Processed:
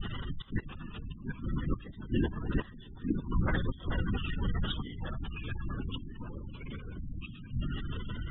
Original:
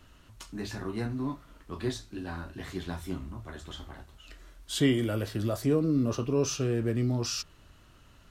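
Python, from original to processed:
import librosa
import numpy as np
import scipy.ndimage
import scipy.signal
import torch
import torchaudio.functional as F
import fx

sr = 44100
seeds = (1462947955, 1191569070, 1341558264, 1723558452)

y = fx.bin_compress(x, sr, power=0.6)
y = fx.room_shoebox(y, sr, seeds[0], volume_m3=1100.0, walls='mixed', distance_m=0.6)
y = fx.vibrato(y, sr, rate_hz=0.64, depth_cents=69.0)
y = fx.peak_eq(y, sr, hz=420.0, db=-13.0, octaves=1.6)
y = fx.notch(y, sr, hz=2300.0, q=6.4)
y = fx.gate_flip(y, sr, shuts_db=-26.0, range_db=-24)
y = fx.echo_pitch(y, sr, ms=656, semitones=-2, count=2, db_per_echo=-6.0)
y = fx.low_shelf(y, sr, hz=170.0, db=3.0)
y = fx.lpc_vocoder(y, sr, seeds[1], excitation='whisper', order=16)
y = fx.spec_gate(y, sr, threshold_db=-20, keep='strong')
y = y * librosa.db_to_amplitude(8.5)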